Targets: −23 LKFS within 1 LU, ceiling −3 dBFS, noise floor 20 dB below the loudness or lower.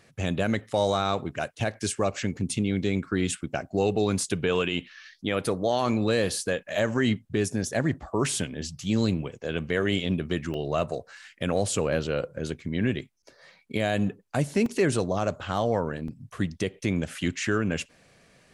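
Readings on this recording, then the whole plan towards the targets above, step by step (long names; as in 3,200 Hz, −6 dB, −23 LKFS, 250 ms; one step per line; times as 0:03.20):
number of dropouts 3; longest dropout 2.7 ms; integrated loudness −28.0 LKFS; sample peak −12.5 dBFS; target loudness −23.0 LKFS
→ repair the gap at 0:10.54/0:14.66/0:16.08, 2.7 ms
level +5 dB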